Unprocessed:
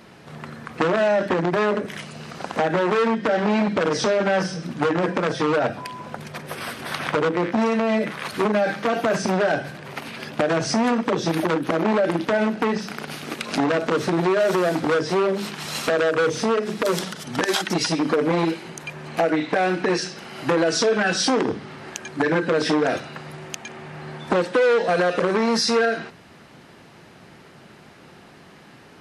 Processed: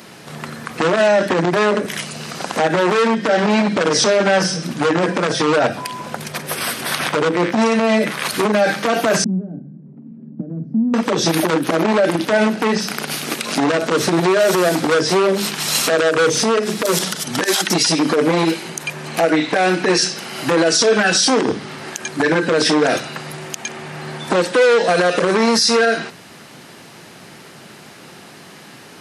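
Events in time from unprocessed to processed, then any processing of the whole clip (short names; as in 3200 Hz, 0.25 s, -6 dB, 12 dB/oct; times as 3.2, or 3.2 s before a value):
9.24–10.94 Butterworth band-pass 200 Hz, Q 1.9
whole clip: HPF 110 Hz; high shelf 4500 Hz +12 dB; limiter -12 dBFS; gain +6 dB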